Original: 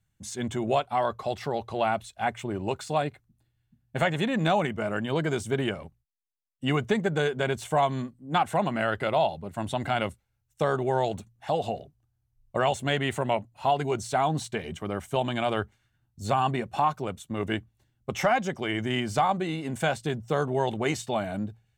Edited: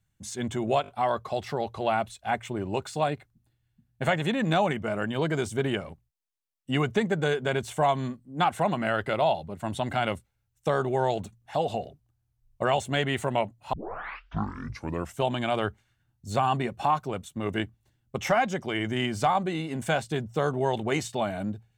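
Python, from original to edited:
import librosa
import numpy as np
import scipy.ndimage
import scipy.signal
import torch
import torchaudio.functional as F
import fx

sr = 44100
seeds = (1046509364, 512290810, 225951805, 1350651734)

y = fx.edit(x, sr, fx.stutter(start_s=0.82, slice_s=0.02, count=4),
    fx.tape_start(start_s=13.67, length_s=1.47), tone=tone)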